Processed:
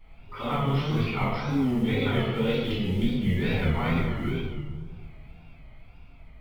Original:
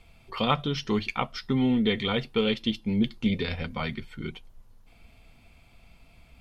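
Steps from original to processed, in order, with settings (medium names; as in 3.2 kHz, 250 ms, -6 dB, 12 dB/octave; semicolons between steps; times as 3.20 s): single-diode clipper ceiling -11 dBFS; Doppler pass-by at 2.67 s, 5 m/s, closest 2.9 m; low-pass 2.6 kHz 12 dB/octave; reverse; compression 10:1, threshold -40 dBFS, peak gain reduction 18.5 dB; reverse; short-mantissa float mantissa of 4-bit; reverberation RT60 1.6 s, pre-delay 3 ms, DRR -12 dB; wow and flutter 110 cents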